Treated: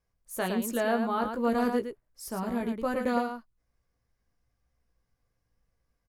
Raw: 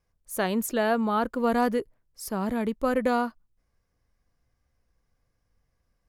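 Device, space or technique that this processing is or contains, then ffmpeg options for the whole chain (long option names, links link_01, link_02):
slapback doubling: -filter_complex "[0:a]asplit=3[link_01][link_02][link_03];[link_02]adelay=17,volume=-6dB[link_04];[link_03]adelay=111,volume=-6dB[link_05];[link_01][link_04][link_05]amix=inputs=3:normalize=0,volume=-5dB"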